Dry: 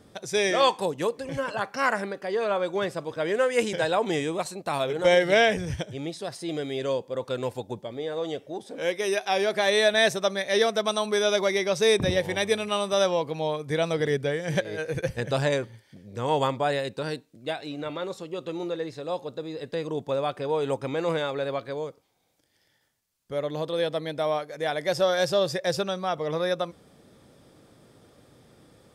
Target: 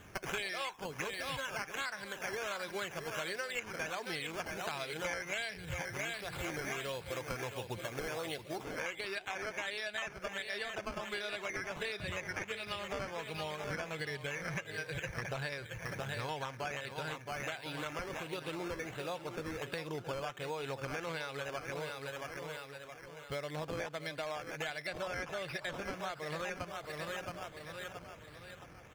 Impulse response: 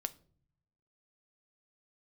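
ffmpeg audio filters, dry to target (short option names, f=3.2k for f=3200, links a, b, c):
-filter_complex "[0:a]equalizer=f=125:t=o:w=1:g=-3,equalizer=f=250:t=o:w=1:g=-11,equalizer=f=500:t=o:w=1:g=-8,equalizer=f=1k:t=o:w=1:g=-5,equalizer=f=2k:t=o:w=1:g=8,equalizer=f=8k:t=o:w=1:g=-7,aecho=1:1:671|1342|2013|2684:0.282|0.121|0.0521|0.0224,acrusher=samples=9:mix=1:aa=0.000001:lfo=1:lforange=5.4:lforate=1.4,acrossover=split=7800[a][b];[b]acompressor=threshold=-44dB:ratio=4:attack=1:release=60[c];[a][c]amix=inputs=2:normalize=0,bandreject=f=1.9k:w=13,acompressor=threshold=-41dB:ratio=12,asetnsamples=n=441:p=0,asendcmd='8.65 highshelf g -9.5',highshelf=f=6.3k:g=-2,volume=5.5dB"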